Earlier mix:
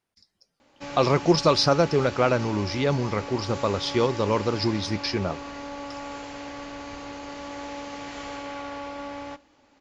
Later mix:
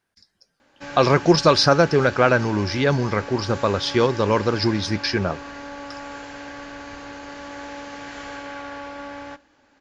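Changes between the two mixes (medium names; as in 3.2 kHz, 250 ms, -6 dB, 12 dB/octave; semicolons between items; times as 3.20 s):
speech +4.0 dB; master: add peaking EQ 1.6 kHz +10.5 dB 0.25 oct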